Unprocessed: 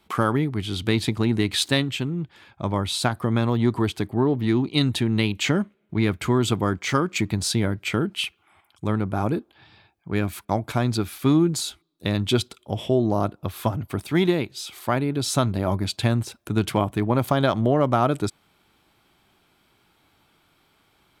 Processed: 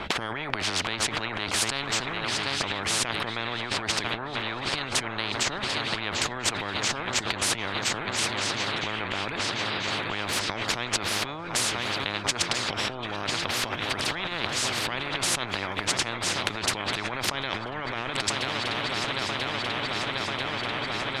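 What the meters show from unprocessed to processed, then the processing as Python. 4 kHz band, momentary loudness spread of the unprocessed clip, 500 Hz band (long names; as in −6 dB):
+3.5 dB, 8 LU, −8.5 dB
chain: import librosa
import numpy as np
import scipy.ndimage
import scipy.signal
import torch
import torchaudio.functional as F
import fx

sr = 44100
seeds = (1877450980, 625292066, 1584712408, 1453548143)

p1 = scipy.signal.sosfilt(scipy.signal.butter(2, 2100.0, 'lowpass', fs=sr, output='sos'), x)
p2 = p1 + fx.echo_swing(p1, sr, ms=989, ratio=3, feedback_pct=69, wet_db=-17, dry=0)
p3 = fx.over_compress(p2, sr, threshold_db=-31.0, ratio=-1.0)
p4 = fx.spectral_comp(p3, sr, ratio=10.0)
y = p4 * 10.0 ** (6.5 / 20.0)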